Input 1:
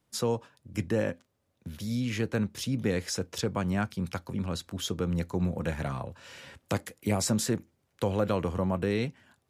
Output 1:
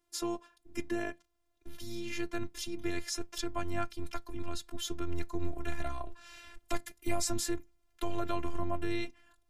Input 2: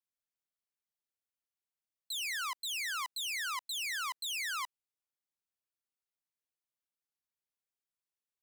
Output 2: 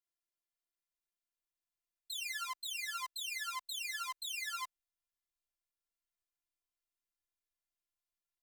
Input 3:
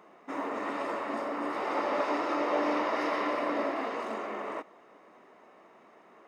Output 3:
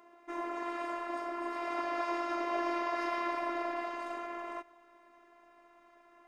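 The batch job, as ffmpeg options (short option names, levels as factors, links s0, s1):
-af "asubboost=boost=8.5:cutoff=100,afftfilt=real='hypot(re,im)*cos(PI*b)':imag='0':win_size=512:overlap=0.75"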